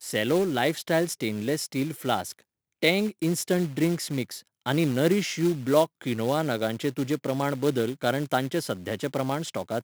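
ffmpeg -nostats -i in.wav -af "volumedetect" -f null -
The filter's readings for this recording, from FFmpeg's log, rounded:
mean_volume: -26.6 dB
max_volume: -7.3 dB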